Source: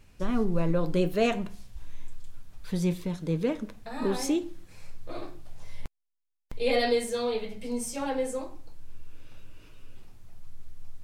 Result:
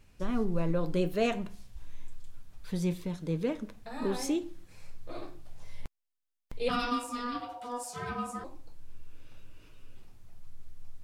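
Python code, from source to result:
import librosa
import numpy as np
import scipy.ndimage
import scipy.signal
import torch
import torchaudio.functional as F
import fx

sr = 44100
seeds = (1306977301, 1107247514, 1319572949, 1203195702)

y = fx.ring_mod(x, sr, carrier_hz=730.0, at=(6.68, 8.43), fade=0.02)
y = y * librosa.db_to_amplitude(-3.5)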